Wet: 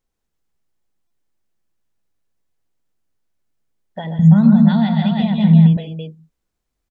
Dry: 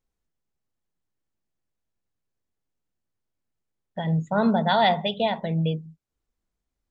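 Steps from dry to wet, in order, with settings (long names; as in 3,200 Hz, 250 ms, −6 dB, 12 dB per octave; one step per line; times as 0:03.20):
parametric band 78 Hz −3 dB 2.7 octaves
multi-tap delay 127/141/201/334 ms −8/−6/−12.5/−6.5 dB
downward compressor 5 to 1, threshold −28 dBFS, peak gain reduction 13.5 dB
0:04.19–0:05.77: low shelf with overshoot 290 Hz +13 dB, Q 3
buffer that repeats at 0:01.07, samples 128, times 10
level +4.5 dB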